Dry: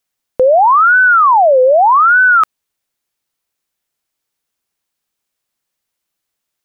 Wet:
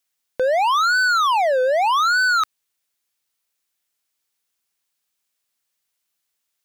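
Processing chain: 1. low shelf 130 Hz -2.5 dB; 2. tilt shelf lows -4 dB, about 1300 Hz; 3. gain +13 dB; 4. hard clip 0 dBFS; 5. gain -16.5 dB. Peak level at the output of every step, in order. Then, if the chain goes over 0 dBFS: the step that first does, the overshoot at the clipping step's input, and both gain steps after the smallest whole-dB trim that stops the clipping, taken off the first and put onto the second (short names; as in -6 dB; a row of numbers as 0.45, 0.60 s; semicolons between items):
-5.0, -4.5, +8.5, 0.0, -16.5 dBFS; step 3, 8.5 dB; step 3 +4 dB, step 5 -7.5 dB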